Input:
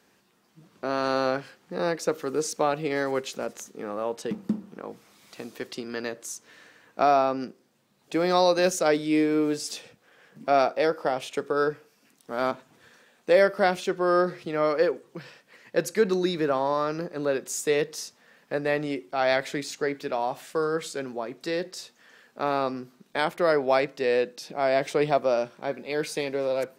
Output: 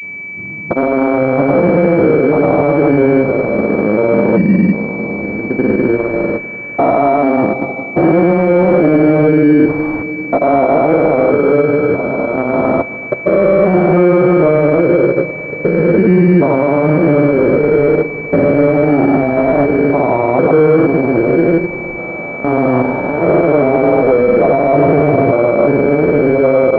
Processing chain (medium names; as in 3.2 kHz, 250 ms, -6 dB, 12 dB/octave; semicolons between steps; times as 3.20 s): spectrogram pixelated in time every 400 ms; bass shelf 380 Hz +10.5 dB; de-hum 66.95 Hz, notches 2; reverberation, pre-delay 3 ms, DRR 6.5 dB; granulator 100 ms, grains 20 per s, pitch spread up and down by 0 st; loudness maximiser +23 dB; class-D stage that switches slowly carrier 2.3 kHz; trim -1 dB